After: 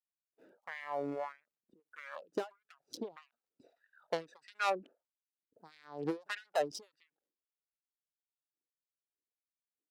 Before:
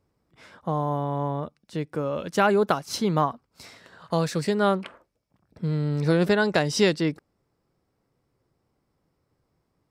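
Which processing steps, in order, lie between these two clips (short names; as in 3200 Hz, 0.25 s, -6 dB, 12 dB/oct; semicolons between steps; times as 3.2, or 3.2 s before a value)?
Wiener smoothing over 41 samples; tube stage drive 24 dB, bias 0.3; 3.22–4.7 bell 4200 Hz +7 dB 2.2 oct; LFO high-pass sine 1.6 Hz 320–2000 Hz; 1.4–1.8 tilt -3 dB/oct; crackle 290/s -65 dBFS; expander -59 dBFS; reverb removal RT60 1.4 s; ending taper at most 240 dB/s; gain -4.5 dB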